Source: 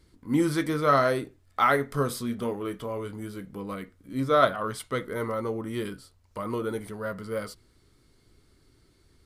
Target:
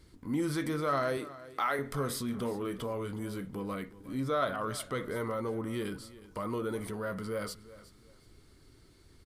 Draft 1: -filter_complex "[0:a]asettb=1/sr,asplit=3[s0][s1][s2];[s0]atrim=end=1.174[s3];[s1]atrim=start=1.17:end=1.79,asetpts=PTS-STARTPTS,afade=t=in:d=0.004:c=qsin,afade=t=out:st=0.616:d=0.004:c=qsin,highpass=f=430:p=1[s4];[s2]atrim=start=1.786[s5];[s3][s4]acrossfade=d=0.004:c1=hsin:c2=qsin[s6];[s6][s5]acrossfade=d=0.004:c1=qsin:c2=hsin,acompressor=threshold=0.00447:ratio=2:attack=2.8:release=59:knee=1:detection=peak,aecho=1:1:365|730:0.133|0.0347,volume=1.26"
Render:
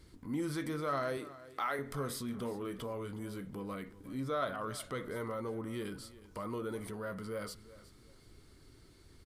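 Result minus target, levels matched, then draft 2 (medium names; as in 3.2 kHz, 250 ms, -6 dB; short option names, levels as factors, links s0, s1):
compression: peak gain reduction +4.5 dB
-filter_complex "[0:a]asettb=1/sr,asplit=3[s0][s1][s2];[s0]atrim=end=1.174[s3];[s1]atrim=start=1.17:end=1.79,asetpts=PTS-STARTPTS,afade=t=in:d=0.004:c=qsin,afade=t=out:st=0.616:d=0.004:c=qsin,highpass=f=430:p=1[s4];[s2]atrim=start=1.786[s5];[s3][s4]acrossfade=d=0.004:c1=hsin:c2=qsin[s6];[s6][s5]acrossfade=d=0.004:c1=qsin:c2=hsin,acompressor=threshold=0.0126:ratio=2:attack=2.8:release=59:knee=1:detection=peak,aecho=1:1:365|730:0.133|0.0347,volume=1.26"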